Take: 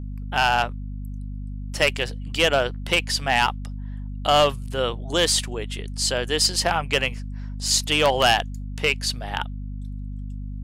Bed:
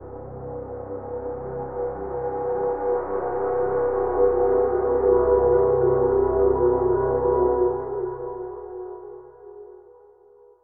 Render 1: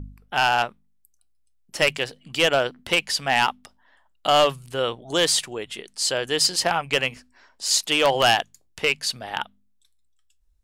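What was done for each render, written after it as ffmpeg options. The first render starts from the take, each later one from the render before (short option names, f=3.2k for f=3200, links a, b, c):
-af "bandreject=f=50:t=h:w=4,bandreject=f=100:t=h:w=4,bandreject=f=150:t=h:w=4,bandreject=f=200:t=h:w=4,bandreject=f=250:t=h:w=4"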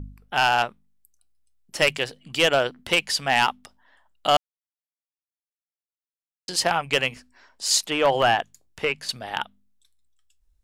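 -filter_complex "[0:a]asettb=1/sr,asplit=3[a][b][c];[a]atrim=end=7.824[d];[b]atrim=start=7.82:end=9.09,asetpts=PTS-STARTPTS,afade=t=in:d=0.004:c=qsin,afade=t=out:st=1.266:d=0.004:c=qsin,acrossover=split=2500[e][f];[f]acompressor=threshold=-37dB:ratio=4:attack=1:release=60[g];[e][g]amix=inputs=2:normalize=0[h];[c]atrim=start=9.086[i];[d][h]acrossfade=d=0.004:c1=hsin:c2=qsin[j];[j][i]acrossfade=d=0.004:c1=qsin:c2=hsin,asplit=3[k][l][m];[k]atrim=end=4.37,asetpts=PTS-STARTPTS,afade=t=out:st=4.366:d=0.004:c=hsin[n];[l]atrim=start=4.37:end=6.48,asetpts=PTS-STARTPTS,volume=0[o];[m]atrim=start=6.48,asetpts=PTS-STARTPTS,afade=t=in:d=0.004:c=hsin[p];[n][o][p]concat=n=3:v=0:a=1"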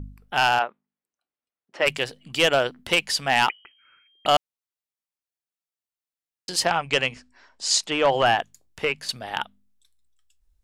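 -filter_complex "[0:a]asplit=3[a][b][c];[a]afade=t=out:st=0.58:d=0.02[d];[b]highpass=350,lowpass=2.1k,afade=t=in:st=0.58:d=0.02,afade=t=out:st=1.85:d=0.02[e];[c]afade=t=in:st=1.85:d=0.02[f];[d][e][f]amix=inputs=3:normalize=0,asettb=1/sr,asplit=3[g][h][i];[g]atrim=end=3.494[j];[h]atrim=start=3.49:end=4.26,asetpts=PTS-STARTPTS,afade=t=in:d=0.004:c=qsin,afade=t=out:st=0.766:d=0.004:c=qsin,lowpass=f=2.7k:t=q:w=0.5098,lowpass=f=2.7k:t=q:w=0.6013,lowpass=f=2.7k:t=q:w=0.9,lowpass=f=2.7k:t=q:w=2.563,afreqshift=-3200[k];[i]atrim=start=4.256[l];[j][k]acrossfade=d=0.004:c1=hsin:c2=qsin[m];[m][l]acrossfade=d=0.004:c1=qsin:c2=hsin,asplit=3[n][o][p];[n]afade=t=out:st=6.65:d=0.02[q];[o]lowpass=f=8.4k:w=0.5412,lowpass=f=8.4k:w=1.3066,afade=t=in:st=6.65:d=0.02,afade=t=out:st=8.24:d=0.02[r];[p]afade=t=in:st=8.24:d=0.02[s];[q][r][s]amix=inputs=3:normalize=0"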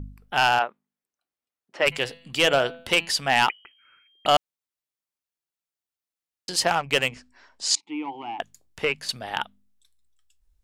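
-filter_complex "[0:a]asplit=3[a][b][c];[a]afade=t=out:st=1.91:d=0.02[d];[b]bandreject=f=167.6:t=h:w=4,bandreject=f=335.2:t=h:w=4,bandreject=f=502.8:t=h:w=4,bandreject=f=670.4:t=h:w=4,bandreject=f=838:t=h:w=4,bandreject=f=1.0056k:t=h:w=4,bandreject=f=1.1732k:t=h:w=4,bandreject=f=1.3408k:t=h:w=4,bandreject=f=1.5084k:t=h:w=4,bandreject=f=1.676k:t=h:w=4,bandreject=f=1.8436k:t=h:w=4,bandreject=f=2.0112k:t=h:w=4,bandreject=f=2.1788k:t=h:w=4,bandreject=f=2.3464k:t=h:w=4,bandreject=f=2.514k:t=h:w=4,bandreject=f=2.6816k:t=h:w=4,bandreject=f=2.8492k:t=h:w=4,bandreject=f=3.0168k:t=h:w=4,bandreject=f=3.1844k:t=h:w=4,bandreject=f=3.352k:t=h:w=4,bandreject=f=3.5196k:t=h:w=4,bandreject=f=3.6872k:t=h:w=4,bandreject=f=3.8548k:t=h:w=4,bandreject=f=4.0224k:t=h:w=4,bandreject=f=4.19k:t=h:w=4,bandreject=f=4.3576k:t=h:w=4,bandreject=f=4.5252k:t=h:w=4,afade=t=in:st=1.91:d=0.02,afade=t=out:st=3.09:d=0.02[e];[c]afade=t=in:st=3.09:d=0.02[f];[d][e][f]amix=inputs=3:normalize=0,asplit=3[g][h][i];[g]afade=t=out:st=6.66:d=0.02[j];[h]adynamicsmooth=sensitivity=4.5:basefreq=2.3k,afade=t=in:st=6.66:d=0.02,afade=t=out:st=7.12:d=0.02[k];[i]afade=t=in:st=7.12:d=0.02[l];[j][k][l]amix=inputs=3:normalize=0,asettb=1/sr,asplit=3[m][n][o];[m]atrim=end=7.754[p];[n]atrim=start=7.75:end=8.4,asetpts=PTS-STARTPTS,afade=t=in:d=0.004:c=qsin,afade=t=out:st=0.646:d=0.004:c=qsin,asplit=3[q][r][s];[q]bandpass=f=300:t=q:w=8,volume=0dB[t];[r]bandpass=f=870:t=q:w=8,volume=-6dB[u];[s]bandpass=f=2.24k:t=q:w=8,volume=-9dB[v];[t][u][v]amix=inputs=3:normalize=0[w];[o]atrim=start=8.396[x];[p][w]acrossfade=d=0.004:c1=hsin:c2=qsin[y];[y][x]acrossfade=d=0.004:c1=qsin:c2=hsin"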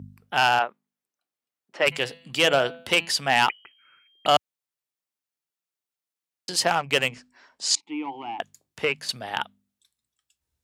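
-af "highpass=f=84:w=0.5412,highpass=f=84:w=1.3066"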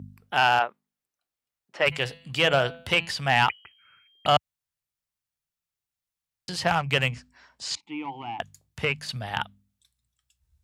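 -filter_complex "[0:a]acrossover=split=3700[a][b];[b]acompressor=threshold=-36dB:ratio=4:attack=1:release=60[c];[a][c]amix=inputs=2:normalize=0,asubboost=boost=9:cutoff=110"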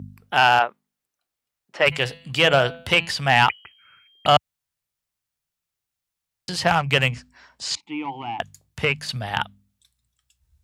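-af "volume=4.5dB"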